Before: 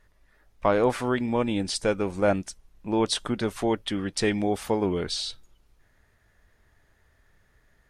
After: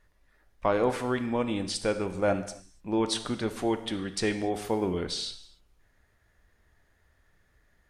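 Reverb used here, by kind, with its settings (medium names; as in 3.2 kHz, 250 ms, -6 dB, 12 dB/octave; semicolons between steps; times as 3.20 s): gated-style reverb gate 310 ms falling, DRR 9 dB; trim -3.5 dB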